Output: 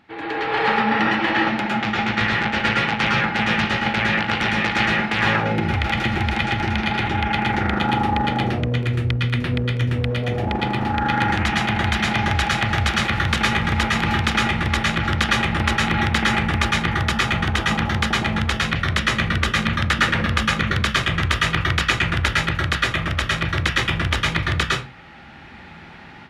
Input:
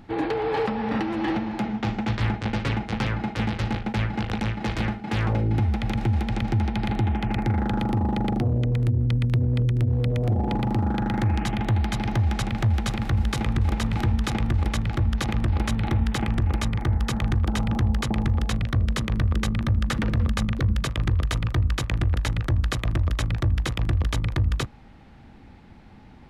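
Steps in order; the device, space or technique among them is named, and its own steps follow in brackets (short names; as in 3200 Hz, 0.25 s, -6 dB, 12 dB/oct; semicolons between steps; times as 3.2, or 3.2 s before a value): far laptop microphone (reverb RT60 0.30 s, pre-delay 0.104 s, DRR -2.5 dB; HPF 160 Hz 6 dB/oct; AGC gain up to 11.5 dB); bell 2200 Hz +12 dB 2.4 oct; gain -9.5 dB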